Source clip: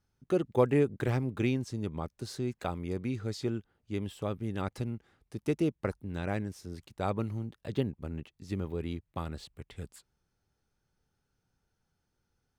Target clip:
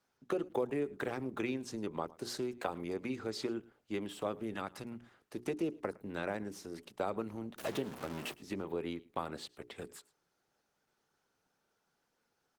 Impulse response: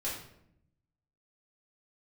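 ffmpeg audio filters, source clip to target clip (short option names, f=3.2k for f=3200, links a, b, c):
-filter_complex "[0:a]asettb=1/sr,asplit=3[a][b][c];[a]atrim=end=7.584[d];[b]atrim=start=7.58:end=8.34,asetpts=PTS-STARTPTS,afade=t=in:d=0.004:c=qsin,afade=t=out:st=0.756:d=0.004:c=qsin,aeval=exprs='val(0)+0.5*0.0141*sgn(val(0))':c=same[e];[c]atrim=start=8.336[f];[d][e]acrossfade=d=0.004:c1=hsin:c2=qsin[g];[g][f]acrossfade=d=0.004:c1=qsin:c2=hsin,acrossover=split=430|4100[h][i][j];[i]alimiter=level_in=3dB:limit=-24dB:level=0:latency=1:release=300,volume=-3dB[k];[h][k][j]amix=inputs=3:normalize=0,equalizer=f=940:w=0.53:g=4,asettb=1/sr,asplit=3[l][m][n];[l]atrim=end=0.794[o];[m]atrim=start=0.79:end=1.64,asetpts=PTS-STARTPTS,afade=t=in:d=0.004:c=qsin,afade=t=out:st=0.846:d=0.004:c=qsin,aeval=exprs='val(0)+0.000891*(sin(2*PI*50*n/s)+sin(2*PI*2*50*n/s)/2+sin(2*PI*3*50*n/s)/3+sin(2*PI*4*50*n/s)/4+sin(2*PI*5*50*n/s)/5)':c=same[p];[n]atrim=start=1.636[q];[o][p]acrossfade=d=0.004:c1=hsin:c2=qsin[r];[r][q]acrossfade=d=0.004:c1=qsin:c2=hsin,acompressor=threshold=-32dB:ratio=5,asettb=1/sr,asplit=3[s][t][u];[s]atrim=end=4.544[v];[t]atrim=start=4.54:end=5.36,asetpts=PTS-STARTPTS,afade=t=in:d=0.004:c=qsin,afade=t=out:st=0.816:d=0.004:c=qsin,adynamicequalizer=threshold=0.002:dfrequency=410:dqfactor=1.3:tfrequency=410:tqfactor=1.3:attack=5:release=100:ratio=0.375:range=3.5:mode=cutabove:tftype=bell[w];[u]atrim=start=5.356[x];[v][w]acrossfade=d=0.004:c1=hsin:c2=qsin[y];[y][x]acrossfade=d=0.004:c1=qsin:c2=hsin,highpass=250,bandreject=f=60:t=h:w=6,bandreject=f=120:t=h:w=6,bandreject=f=180:t=h:w=6,bandreject=f=240:t=h:w=6,bandreject=f=300:t=h:w=6,bandreject=f=360:t=h:w=6,bandreject=f=420:t=h:w=6,asplit=2[z][aa];[aa]aecho=0:1:110:0.0794[ab];[z][ab]amix=inputs=2:normalize=0,volume=3dB" -ar 48000 -c:a libopus -b:a 16k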